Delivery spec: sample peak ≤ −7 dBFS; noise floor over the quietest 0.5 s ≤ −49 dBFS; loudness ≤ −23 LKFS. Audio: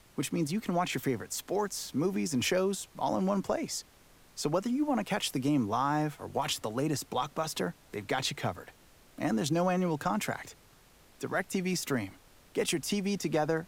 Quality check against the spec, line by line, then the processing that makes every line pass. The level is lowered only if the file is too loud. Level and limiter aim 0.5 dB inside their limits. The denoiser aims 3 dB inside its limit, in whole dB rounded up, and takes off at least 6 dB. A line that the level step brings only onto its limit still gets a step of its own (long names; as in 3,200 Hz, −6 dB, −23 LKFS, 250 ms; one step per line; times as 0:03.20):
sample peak −17.0 dBFS: in spec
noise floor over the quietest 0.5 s −60 dBFS: in spec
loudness −32.0 LKFS: in spec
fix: no processing needed